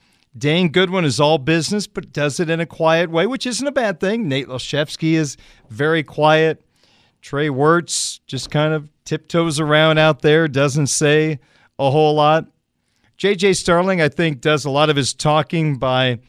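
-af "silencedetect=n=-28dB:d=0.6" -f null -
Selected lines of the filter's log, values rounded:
silence_start: 6.54
silence_end: 7.27 | silence_duration: 0.73
silence_start: 12.43
silence_end: 13.20 | silence_duration: 0.78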